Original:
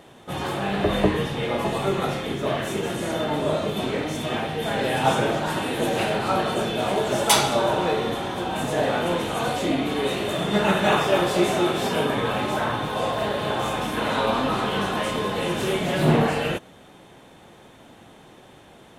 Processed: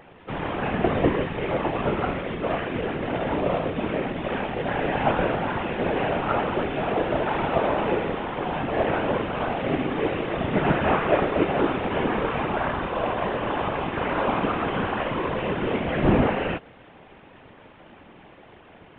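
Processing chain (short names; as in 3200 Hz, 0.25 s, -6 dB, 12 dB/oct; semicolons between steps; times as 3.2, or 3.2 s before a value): CVSD 16 kbps; whisperiser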